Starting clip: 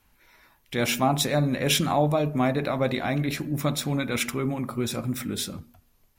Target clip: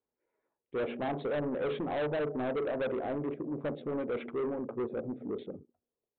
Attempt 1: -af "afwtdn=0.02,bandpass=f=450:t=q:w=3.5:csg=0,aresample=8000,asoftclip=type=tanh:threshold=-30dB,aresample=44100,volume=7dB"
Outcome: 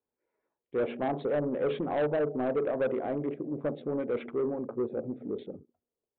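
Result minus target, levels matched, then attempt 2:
soft clip: distortion -5 dB
-af "afwtdn=0.02,bandpass=f=450:t=q:w=3.5:csg=0,aresample=8000,asoftclip=type=tanh:threshold=-36dB,aresample=44100,volume=7dB"

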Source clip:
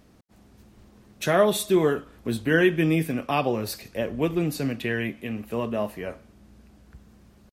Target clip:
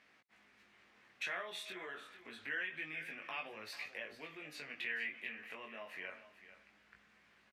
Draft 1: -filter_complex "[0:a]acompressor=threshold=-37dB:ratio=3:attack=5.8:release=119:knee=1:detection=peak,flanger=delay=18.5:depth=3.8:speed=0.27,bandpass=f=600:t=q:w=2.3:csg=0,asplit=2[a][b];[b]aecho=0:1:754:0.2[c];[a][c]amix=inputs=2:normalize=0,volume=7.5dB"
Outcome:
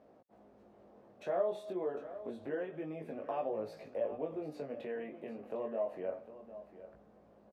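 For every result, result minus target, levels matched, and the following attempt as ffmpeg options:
2000 Hz band -17.5 dB; echo 0.312 s late
-filter_complex "[0:a]acompressor=threshold=-37dB:ratio=3:attack=5.8:release=119:knee=1:detection=peak,flanger=delay=18.5:depth=3.8:speed=0.27,bandpass=f=2.1k:t=q:w=2.3:csg=0,asplit=2[a][b];[b]aecho=0:1:754:0.2[c];[a][c]amix=inputs=2:normalize=0,volume=7.5dB"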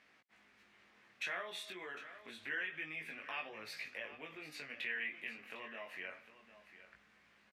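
echo 0.312 s late
-filter_complex "[0:a]acompressor=threshold=-37dB:ratio=3:attack=5.8:release=119:knee=1:detection=peak,flanger=delay=18.5:depth=3.8:speed=0.27,bandpass=f=2.1k:t=q:w=2.3:csg=0,asplit=2[a][b];[b]aecho=0:1:442:0.2[c];[a][c]amix=inputs=2:normalize=0,volume=7.5dB"

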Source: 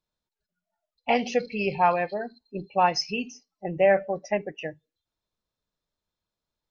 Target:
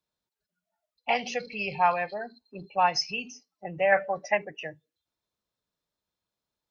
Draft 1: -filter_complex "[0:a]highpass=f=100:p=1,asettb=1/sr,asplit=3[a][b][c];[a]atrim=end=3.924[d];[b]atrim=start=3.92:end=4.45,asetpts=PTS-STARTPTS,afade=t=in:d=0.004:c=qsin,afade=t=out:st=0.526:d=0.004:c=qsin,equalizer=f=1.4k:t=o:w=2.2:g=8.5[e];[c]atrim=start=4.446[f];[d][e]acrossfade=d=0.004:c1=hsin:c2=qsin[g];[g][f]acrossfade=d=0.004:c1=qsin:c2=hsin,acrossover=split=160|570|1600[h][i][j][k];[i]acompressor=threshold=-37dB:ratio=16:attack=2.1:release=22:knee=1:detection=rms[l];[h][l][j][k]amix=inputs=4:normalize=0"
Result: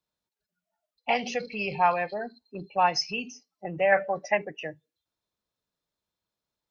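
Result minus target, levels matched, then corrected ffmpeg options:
compressor: peak gain reduction -8.5 dB
-filter_complex "[0:a]highpass=f=100:p=1,asettb=1/sr,asplit=3[a][b][c];[a]atrim=end=3.924[d];[b]atrim=start=3.92:end=4.45,asetpts=PTS-STARTPTS,afade=t=in:d=0.004:c=qsin,afade=t=out:st=0.526:d=0.004:c=qsin,equalizer=f=1.4k:t=o:w=2.2:g=8.5[e];[c]atrim=start=4.446[f];[d][e]acrossfade=d=0.004:c1=hsin:c2=qsin[g];[g][f]acrossfade=d=0.004:c1=qsin:c2=hsin,acrossover=split=160|570|1600[h][i][j][k];[i]acompressor=threshold=-46dB:ratio=16:attack=2.1:release=22:knee=1:detection=rms[l];[h][l][j][k]amix=inputs=4:normalize=0"

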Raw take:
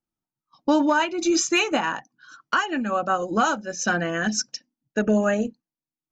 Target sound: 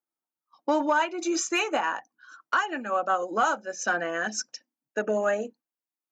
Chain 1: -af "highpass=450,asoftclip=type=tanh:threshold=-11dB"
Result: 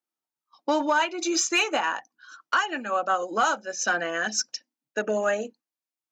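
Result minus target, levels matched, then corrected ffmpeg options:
4000 Hz band +4.5 dB
-af "highpass=450,equalizer=f=4.2k:t=o:w=1.7:g=-8,asoftclip=type=tanh:threshold=-11dB"

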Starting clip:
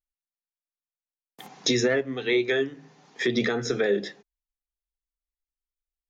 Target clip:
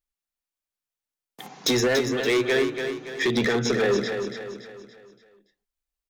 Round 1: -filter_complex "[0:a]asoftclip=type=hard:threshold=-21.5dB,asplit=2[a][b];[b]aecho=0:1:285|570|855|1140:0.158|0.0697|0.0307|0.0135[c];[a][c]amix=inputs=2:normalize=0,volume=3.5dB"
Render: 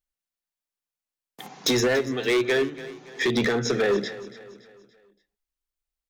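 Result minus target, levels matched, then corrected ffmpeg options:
echo-to-direct -9 dB
-filter_complex "[0:a]asoftclip=type=hard:threshold=-21.5dB,asplit=2[a][b];[b]aecho=0:1:285|570|855|1140|1425:0.447|0.197|0.0865|0.0381|0.0167[c];[a][c]amix=inputs=2:normalize=0,volume=3.5dB"

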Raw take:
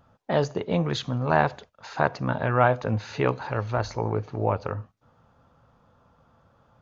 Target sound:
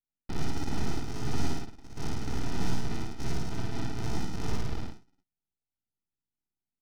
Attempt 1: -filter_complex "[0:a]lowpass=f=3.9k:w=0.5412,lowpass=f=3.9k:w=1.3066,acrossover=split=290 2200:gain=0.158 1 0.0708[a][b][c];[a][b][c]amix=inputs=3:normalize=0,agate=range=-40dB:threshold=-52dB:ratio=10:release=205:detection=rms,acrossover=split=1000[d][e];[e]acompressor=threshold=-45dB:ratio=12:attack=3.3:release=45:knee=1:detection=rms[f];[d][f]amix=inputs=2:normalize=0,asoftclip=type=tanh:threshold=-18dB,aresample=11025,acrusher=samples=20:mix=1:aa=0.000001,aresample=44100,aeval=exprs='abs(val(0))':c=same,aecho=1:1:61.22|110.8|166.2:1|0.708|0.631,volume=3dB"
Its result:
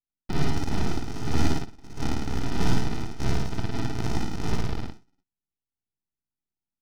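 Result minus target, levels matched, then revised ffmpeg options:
compressor: peak gain reduction -10.5 dB; soft clip: distortion -9 dB
-filter_complex "[0:a]lowpass=f=3.9k:w=0.5412,lowpass=f=3.9k:w=1.3066,acrossover=split=290 2200:gain=0.158 1 0.0708[a][b][c];[a][b][c]amix=inputs=3:normalize=0,agate=range=-40dB:threshold=-52dB:ratio=10:release=205:detection=rms,acrossover=split=1000[d][e];[e]acompressor=threshold=-56.5dB:ratio=12:attack=3.3:release=45:knee=1:detection=rms[f];[d][f]amix=inputs=2:normalize=0,asoftclip=type=tanh:threshold=-28.5dB,aresample=11025,acrusher=samples=20:mix=1:aa=0.000001,aresample=44100,aeval=exprs='abs(val(0))':c=same,aecho=1:1:61.22|110.8|166.2:1|0.708|0.631,volume=3dB"

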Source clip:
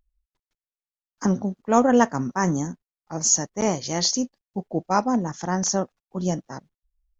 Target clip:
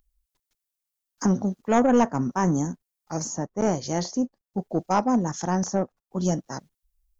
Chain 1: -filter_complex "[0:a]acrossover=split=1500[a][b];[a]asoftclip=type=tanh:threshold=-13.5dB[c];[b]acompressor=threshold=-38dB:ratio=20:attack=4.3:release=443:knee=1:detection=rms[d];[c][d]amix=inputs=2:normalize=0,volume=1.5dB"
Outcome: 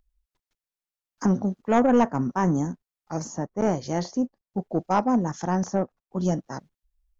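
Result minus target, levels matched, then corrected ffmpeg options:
8000 Hz band -6.5 dB
-filter_complex "[0:a]acrossover=split=1500[a][b];[a]asoftclip=type=tanh:threshold=-13.5dB[c];[b]acompressor=threshold=-38dB:ratio=20:attack=4.3:release=443:knee=1:detection=rms,highshelf=f=5.2k:g=11.5[d];[c][d]amix=inputs=2:normalize=0,volume=1.5dB"

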